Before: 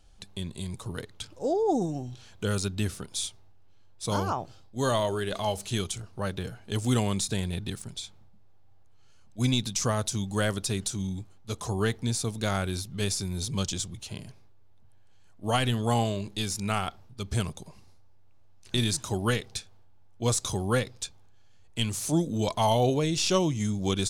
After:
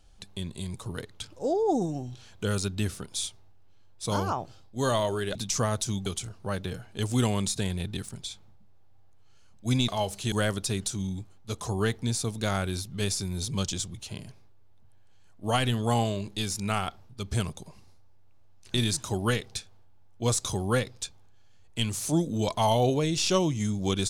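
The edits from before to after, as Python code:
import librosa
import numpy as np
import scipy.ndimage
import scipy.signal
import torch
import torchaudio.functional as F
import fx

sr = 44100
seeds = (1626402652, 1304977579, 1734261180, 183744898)

y = fx.edit(x, sr, fx.swap(start_s=5.35, length_s=0.44, other_s=9.61, other_length_s=0.71), tone=tone)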